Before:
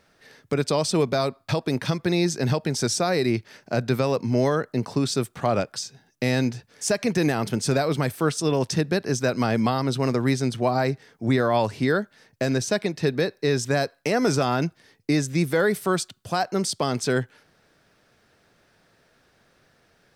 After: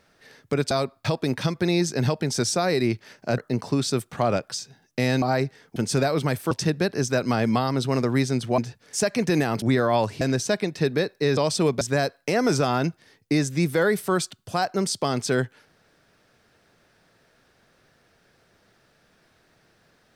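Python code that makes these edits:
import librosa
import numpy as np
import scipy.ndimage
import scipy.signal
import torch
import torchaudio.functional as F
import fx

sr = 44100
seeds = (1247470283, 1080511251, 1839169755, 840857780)

y = fx.edit(x, sr, fx.move(start_s=0.71, length_s=0.44, to_s=13.59),
    fx.cut(start_s=3.82, length_s=0.8),
    fx.swap(start_s=6.46, length_s=1.04, other_s=10.69, other_length_s=0.54),
    fx.cut(start_s=8.25, length_s=0.37),
    fx.cut(start_s=11.82, length_s=0.61), tone=tone)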